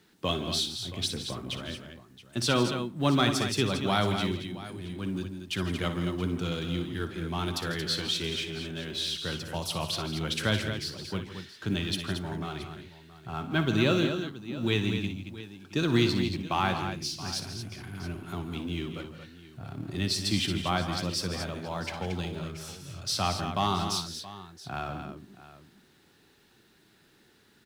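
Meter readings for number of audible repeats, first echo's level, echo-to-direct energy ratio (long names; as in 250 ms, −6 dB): 4, −12.5 dB, −5.0 dB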